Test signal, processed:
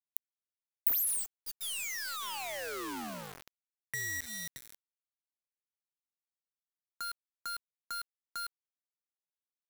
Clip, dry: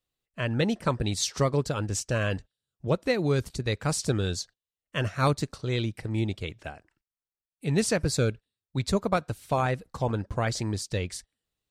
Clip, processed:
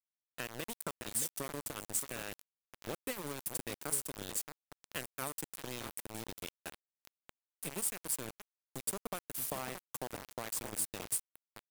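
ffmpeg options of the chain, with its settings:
-filter_complex "[0:a]aexciter=amount=6.4:drive=9:freq=8.4k,acompressor=threshold=-30dB:ratio=12,aeval=exprs='0.316*(cos(1*acos(clip(val(0)/0.316,-1,1)))-cos(1*PI/2))+0.00316*(cos(3*acos(clip(val(0)/0.316,-1,1)))-cos(3*PI/2))+0.0282*(cos(4*acos(clip(val(0)/0.316,-1,1)))-cos(4*PI/2))+0.00447*(cos(6*acos(clip(val(0)/0.316,-1,1)))-cos(6*PI/2))':c=same,asuperstop=centerf=4100:order=4:qfactor=6,asplit=2[a][b];[b]adelay=624,lowpass=f=1.5k:p=1,volume=-5.5dB,asplit=2[c][d];[d]adelay=624,lowpass=f=1.5k:p=1,volume=0.21,asplit=2[e][f];[f]adelay=624,lowpass=f=1.5k:p=1,volume=0.21[g];[c][e][g]amix=inputs=3:normalize=0[h];[a][h]amix=inputs=2:normalize=0,acrossover=split=180[i][j];[i]acompressor=threshold=-52dB:ratio=3[k];[k][j]amix=inputs=2:normalize=0,aeval=exprs='val(0)*gte(abs(val(0)),0.0251)':c=same,highshelf=f=6.8k:g=7.5,volume=-5dB"

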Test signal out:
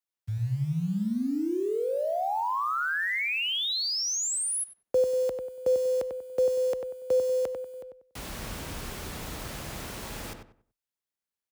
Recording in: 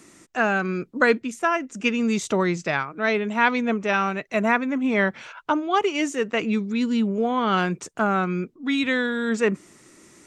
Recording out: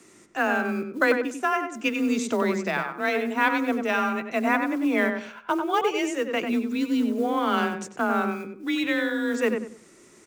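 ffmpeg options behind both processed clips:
-filter_complex "[0:a]acrusher=bits=7:mode=log:mix=0:aa=0.000001,afreqshift=26,asplit=2[a][b];[b]adelay=95,lowpass=f=2k:p=1,volume=-5dB,asplit=2[c][d];[d]adelay=95,lowpass=f=2k:p=1,volume=0.29,asplit=2[e][f];[f]adelay=95,lowpass=f=2k:p=1,volume=0.29,asplit=2[g][h];[h]adelay=95,lowpass=f=2k:p=1,volume=0.29[i];[a][c][e][g][i]amix=inputs=5:normalize=0,volume=-3dB"

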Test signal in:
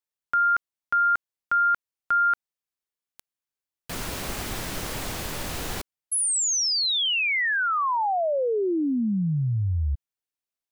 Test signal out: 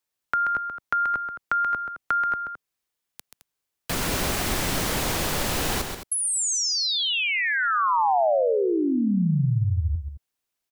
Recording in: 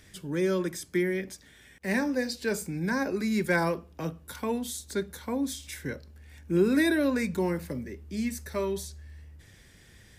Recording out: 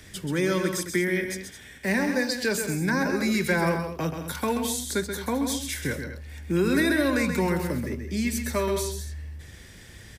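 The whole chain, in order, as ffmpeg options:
-filter_complex "[0:a]acrossover=split=130|770[a][b][c];[a]acompressor=threshold=-38dB:ratio=3[d];[b]acompressor=threshold=-38dB:ratio=2[e];[c]acompressor=threshold=-33dB:ratio=6[f];[d][e][f]amix=inputs=3:normalize=0,asplit=2[g][h];[h]aecho=0:1:131.2|215.7:0.447|0.251[i];[g][i]amix=inputs=2:normalize=0,volume=7.5dB"

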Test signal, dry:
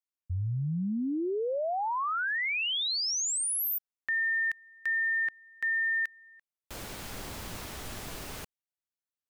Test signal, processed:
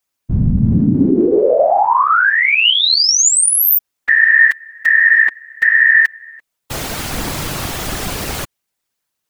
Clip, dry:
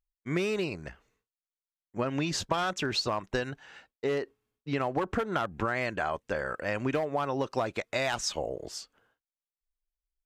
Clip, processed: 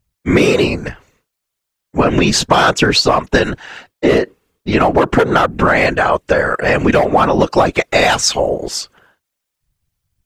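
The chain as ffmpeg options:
-af "acontrast=71,afftfilt=real='hypot(re,im)*cos(2*PI*random(0))':imag='hypot(re,im)*sin(2*PI*random(1))':win_size=512:overlap=0.75,apsyclip=19dB,volume=-1.5dB"

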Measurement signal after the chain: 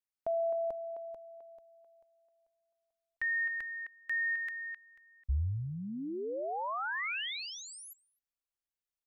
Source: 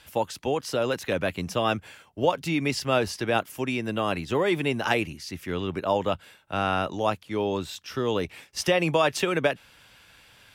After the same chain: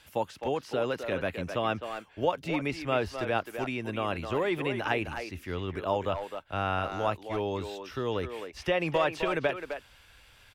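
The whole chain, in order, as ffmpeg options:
-filter_complex "[0:a]acrossover=split=3400[a][b];[b]acompressor=threshold=-47dB:ratio=4:attack=1:release=60[c];[a][c]amix=inputs=2:normalize=0,asplit=2[d][e];[e]adelay=260,highpass=300,lowpass=3.4k,asoftclip=type=hard:threshold=-17dB,volume=-7dB[f];[d][f]amix=inputs=2:normalize=0,asubboost=boost=5.5:cutoff=67,volume=-4dB"

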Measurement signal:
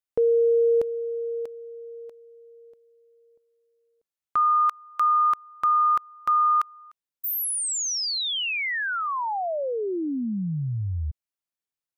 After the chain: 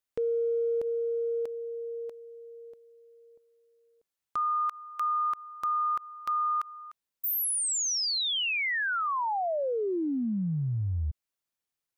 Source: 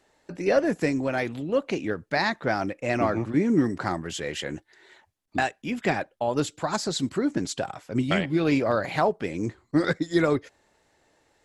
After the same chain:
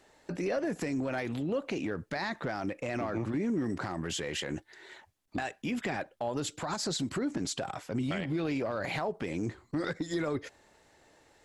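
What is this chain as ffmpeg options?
-af "acompressor=threshold=-30dB:ratio=6:attack=0.19:release=107:knee=6:detection=peak,volume=3dB"

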